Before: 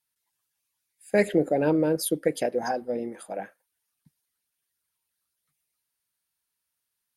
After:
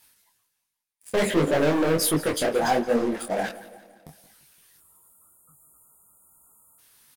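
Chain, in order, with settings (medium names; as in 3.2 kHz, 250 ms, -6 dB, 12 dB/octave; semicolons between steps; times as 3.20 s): spectral selection erased 4.78–6.79 s, 1.4–6.8 kHz; waveshaping leveller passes 5; reverse; upward compressor, threshold -17 dBFS; reverse; flange 0.32 Hz, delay 3.1 ms, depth 9.3 ms, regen -71%; feedback delay 172 ms, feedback 57%, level -18 dB; detune thickener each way 48 cents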